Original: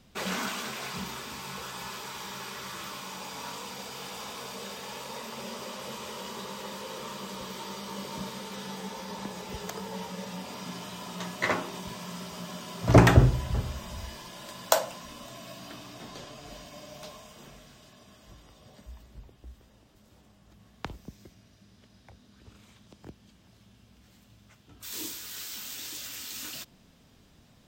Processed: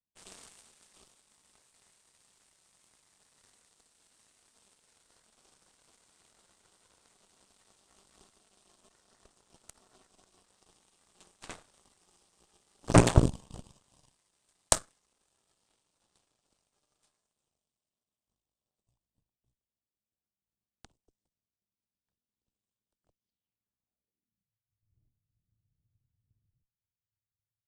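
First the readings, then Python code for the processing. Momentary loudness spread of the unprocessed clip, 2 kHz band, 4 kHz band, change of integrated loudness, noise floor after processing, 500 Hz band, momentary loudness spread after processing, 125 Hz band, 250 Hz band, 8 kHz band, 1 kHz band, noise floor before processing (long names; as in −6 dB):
17 LU, −10.5 dB, −9.5 dB, +6.5 dB, below −85 dBFS, −5.5 dB, 6 LU, −6.0 dB, −4.0 dB, −1.0 dB, −7.5 dB, −60 dBFS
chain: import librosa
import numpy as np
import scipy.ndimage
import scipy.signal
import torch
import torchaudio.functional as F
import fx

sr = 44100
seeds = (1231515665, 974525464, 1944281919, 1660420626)

y = fx.band_shelf(x, sr, hz=1700.0, db=-10.5, octaves=1.0)
y = fx.cheby_harmonics(y, sr, harmonics=(4, 7), levels_db=(-11, -17), full_scale_db=-4.0)
y = fx.filter_sweep_lowpass(y, sr, from_hz=8800.0, to_hz=110.0, start_s=23.11, end_s=24.57, q=4.3)
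y = y * 10.0 ** (-4.0 / 20.0)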